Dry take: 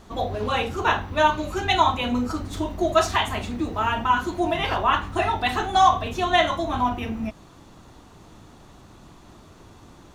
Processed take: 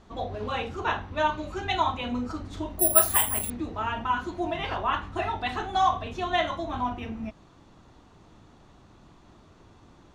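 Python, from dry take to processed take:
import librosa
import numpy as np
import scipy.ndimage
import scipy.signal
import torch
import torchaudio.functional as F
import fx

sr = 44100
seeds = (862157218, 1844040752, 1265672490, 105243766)

y = fx.air_absorb(x, sr, metres=64.0)
y = fx.resample_bad(y, sr, factor=4, down='filtered', up='zero_stuff', at=(2.79, 3.5))
y = F.gain(torch.from_numpy(y), -6.0).numpy()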